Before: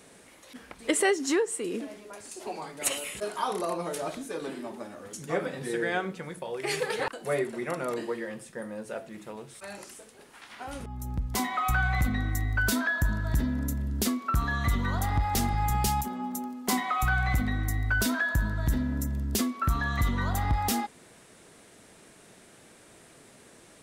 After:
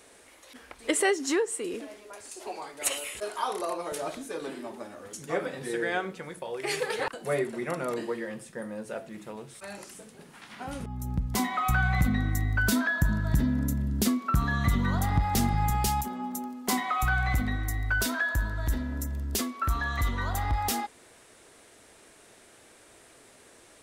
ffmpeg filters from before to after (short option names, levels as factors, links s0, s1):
-af "asetnsamples=n=441:p=0,asendcmd='0.84 equalizer g -5.5;1.74 equalizer g -13.5;3.92 equalizer g -4.5;7.14 equalizer g 2;9.95 equalizer g 13.5;10.73 equalizer g 6.5;15.7 equalizer g -2;17.56 equalizer g -10.5',equalizer=f=170:t=o:w=1:g=-12.5"